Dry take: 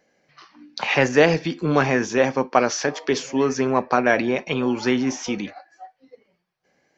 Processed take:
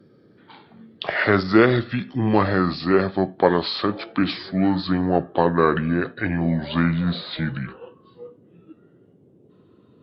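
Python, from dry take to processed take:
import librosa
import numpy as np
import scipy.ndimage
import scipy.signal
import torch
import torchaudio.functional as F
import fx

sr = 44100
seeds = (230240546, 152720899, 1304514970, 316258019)

y = fx.speed_glide(x, sr, from_pct=77, to_pct=62)
y = fx.dmg_noise_band(y, sr, seeds[0], low_hz=100.0, high_hz=440.0, level_db=-54.0)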